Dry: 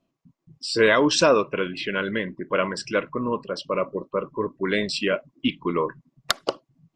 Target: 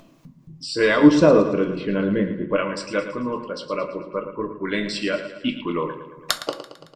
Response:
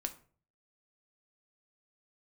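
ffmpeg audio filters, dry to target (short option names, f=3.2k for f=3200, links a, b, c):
-filter_complex "[0:a]asettb=1/sr,asplit=3[a][b][c];[a]atrim=end=1.034[d];[b]atrim=start=1.03:end=2.56,asetpts=PTS-STARTPTS,afade=t=in:d=0.004:c=qsin,afade=t=out:st=1.526:d=0.004:c=qsin,tiltshelf=f=970:g=9.5[e];[c]atrim=start=2.556[f];[d][e]acrossfade=d=0.004:c1=hsin:c2=qsin[g];[g][f]acrossfade=d=0.004:c1=qsin:c2=hsin,aecho=1:1:112|224|336|448|560:0.282|0.144|0.0733|0.0374|0.0191,acompressor=mode=upward:threshold=-32dB:ratio=2.5,asettb=1/sr,asplit=3[h][i][j];[h]atrim=end=5.494[k];[i]atrim=start=5.49:end=6.31,asetpts=PTS-STARTPTS,afade=t=in:d=0.004:c=qsin,afade=t=out:st=0.816:d=0.004:c=qsin,highshelf=f=5.2k:g=7.5[l];[j]atrim=start=6.306[m];[k][l]acrossfade=d=0.004:c1=hsin:c2=qsin[n];[n][m]acrossfade=d=0.004:c1=qsin:c2=hsin[o];[1:a]atrim=start_sample=2205[p];[o][p]afir=irnorm=-1:irlink=0,volume=-1dB"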